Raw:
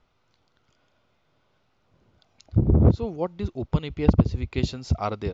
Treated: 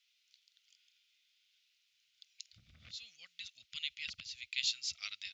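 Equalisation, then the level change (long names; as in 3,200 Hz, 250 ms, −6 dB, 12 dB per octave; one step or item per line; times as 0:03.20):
inverse Chebyshev high-pass filter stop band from 1,000 Hz, stop band 50 dB
+4.5 dB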